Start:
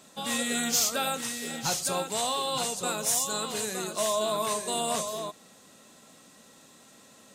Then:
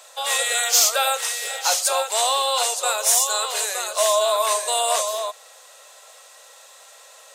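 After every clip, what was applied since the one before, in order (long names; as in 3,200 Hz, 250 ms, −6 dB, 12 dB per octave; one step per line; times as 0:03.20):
Butterworth high-pass 500 Hz 48 dB per octave
level +9 dB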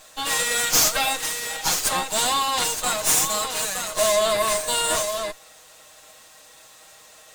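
lower of the sound and its delayed copy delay 6.4 ms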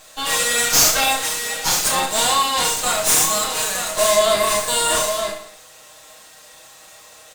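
reverse bouncing-ball delay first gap 30 ms, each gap 1.25×, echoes 5
level +2 dB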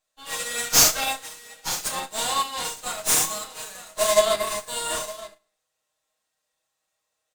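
expander for the loud parts 2.5 to 1, over −35 dBFS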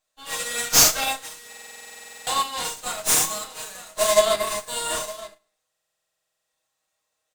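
buffer that repeats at 0:01.48/0:05.69, samples 2,048, times 16
level +1 dB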